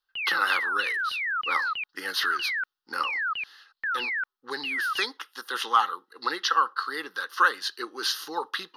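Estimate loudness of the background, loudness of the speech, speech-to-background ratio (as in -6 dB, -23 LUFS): -29.5 LUFS, -28.5 LUFS, 1.0 dB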